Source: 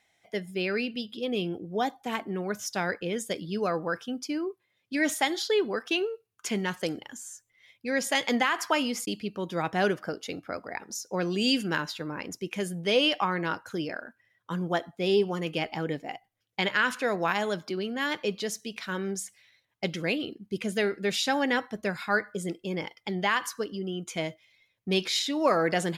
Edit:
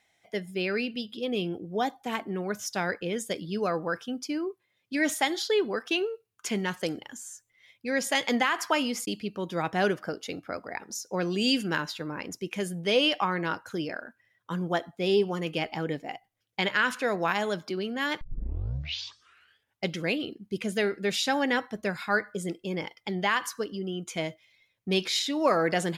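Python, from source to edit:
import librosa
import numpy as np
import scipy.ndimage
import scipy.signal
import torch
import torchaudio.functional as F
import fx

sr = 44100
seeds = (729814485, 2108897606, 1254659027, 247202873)

y = fx.edit(x, sr, fx.tape_start(start_s=18.21, length_s=1.65), tone=tone)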